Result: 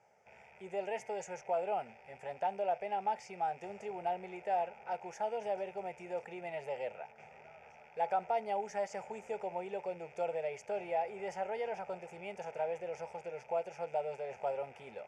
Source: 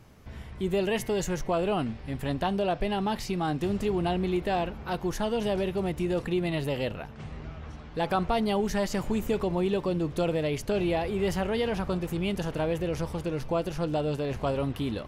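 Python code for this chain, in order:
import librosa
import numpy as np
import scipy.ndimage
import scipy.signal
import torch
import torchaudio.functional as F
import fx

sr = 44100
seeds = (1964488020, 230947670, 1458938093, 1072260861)

y = fx.rattle_buzz(x, sr, strikes_db=-44.0, level_db=-37.0)
y = fx.cabinet(y, sr, low_hz=420.0, low_slope=12, high_hz=6700.0, hz=(860.0, 1700.0, 3000.0), db=(8, -8, -9))
y = fx.fixed_phaser(y, sr, hz=1100.0, stages=6)
y = y * 10.0 ** (-5.0 / 20.0)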